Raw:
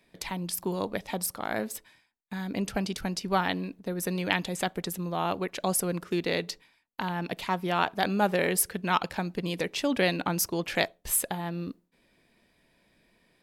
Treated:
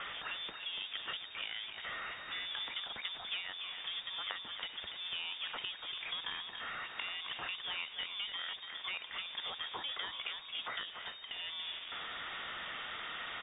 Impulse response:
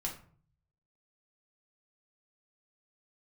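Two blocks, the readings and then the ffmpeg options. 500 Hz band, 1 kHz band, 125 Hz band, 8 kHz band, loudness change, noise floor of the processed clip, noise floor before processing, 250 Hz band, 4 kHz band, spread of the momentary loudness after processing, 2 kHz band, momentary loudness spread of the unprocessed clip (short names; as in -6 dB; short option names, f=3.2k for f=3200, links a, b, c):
-24.5 dB, -15.0 dB, -30.5 dB, under -40 dB, -10.0 dB, -50 dBFS, -69 dBFS, -31.5 dB, +0.5 dB, 3 LU, -7.0 dB, 10 LU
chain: -af "aeval=exprs='val(0)+0.5*0.0266*sgn(val(0))':c=same,lowshelf=f=390:g=-12,acompressor=threshold=-36dB:ratio=10,aecho=1:1:287:0.422,aeval=exprs='0.133*(cos(1*acos(clip(val(0)/0.133,-1,1)))-cos(1*PI/2))+0.0237*(cos(4*acos(clip(val(0)/0.133,-1,1)))-cos(4*PI/2))':c=same,lowpass=f=3.1k:t=q:w=0.5098,lowpass=f=3.1k:t=q:w=0.6013,lowpass=f=3.1k:t=q:w=0.9,lowpass=f=3.1k:t=q:w=2.563,afreqshift=-3700,volume=-1dB"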